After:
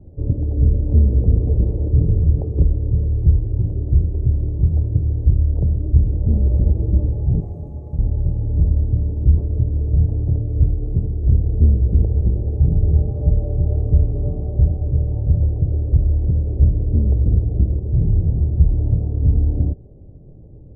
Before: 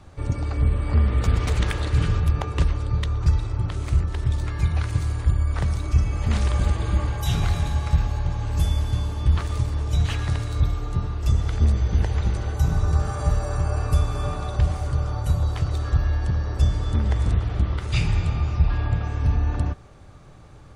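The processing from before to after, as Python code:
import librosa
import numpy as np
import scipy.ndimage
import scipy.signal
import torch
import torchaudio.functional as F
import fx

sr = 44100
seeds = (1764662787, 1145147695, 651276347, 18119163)

y = scipy.signal.sosfilt(scipy.signal.cheby2(4, 50, 1300.0, 'lowpass', fs=sr, output='sos'), x)
y = fx.tilt_eq(y, sr, slope=3.5, at=(7.4, 7.99))
y = y * 10.0 ** (5.5 / 20.0)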